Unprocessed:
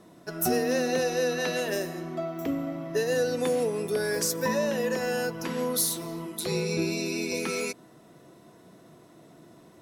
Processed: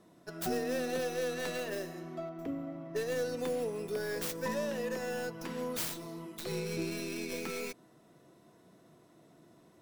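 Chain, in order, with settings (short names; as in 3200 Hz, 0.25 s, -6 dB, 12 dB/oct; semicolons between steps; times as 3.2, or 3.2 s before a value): tracing distortion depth 0.44 ms; 2.29–2.96 high shelf 2600 Hz -10 dB; gain -8 dB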